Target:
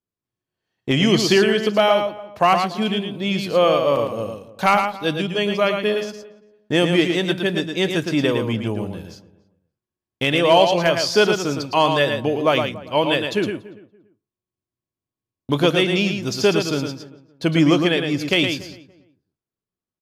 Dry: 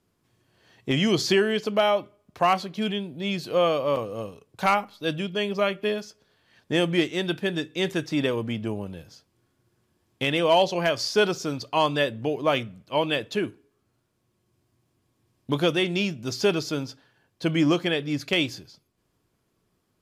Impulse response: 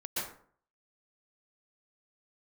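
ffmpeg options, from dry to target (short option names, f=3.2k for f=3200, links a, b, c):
-filter_complex "[0:a]asplit=2[a][b];[b]aecho=0:1:112:0.501[c];[a][c]amix=inputs=2:normalize=0,agate=range=-26dB:threshold=-48dB:ratio=16:detection=peak,asplit=2[d][e];[e]adelay=286,lowpass=f=1.3k:p=1,volume=-18dB,asplit=2[f][g];[g]adelay=286,lowpass=f=1.3k:p=1,volume=0.21[h];[f][h]amix=inputs=2:normalize=0[i];[d][i]amix=inputs=2:normalize=0,volume=5dB"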